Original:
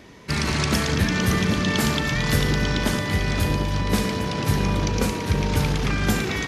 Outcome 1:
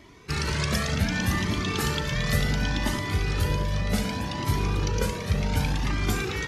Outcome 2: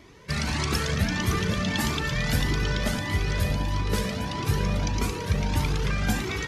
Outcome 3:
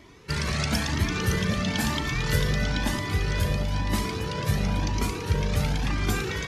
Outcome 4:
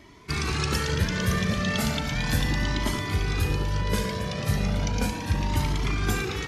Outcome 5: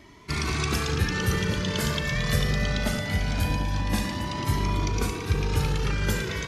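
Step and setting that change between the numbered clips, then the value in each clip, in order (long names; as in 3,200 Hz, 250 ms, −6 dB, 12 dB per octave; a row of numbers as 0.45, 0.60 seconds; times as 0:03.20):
flanger whose copies keep moving one way, speed: 0.67, 1.6, 1, 0.35, 0.22 Hertz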